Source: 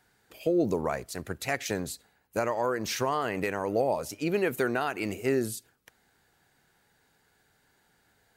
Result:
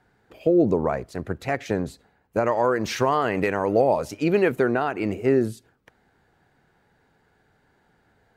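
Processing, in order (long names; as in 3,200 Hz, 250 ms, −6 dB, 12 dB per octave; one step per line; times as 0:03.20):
low-pass filter 1,000 Hz 6 dB per octave, from 0:02.46 2,600 Hz, from 0:04.52 1,100 Hz
level +7.5 dB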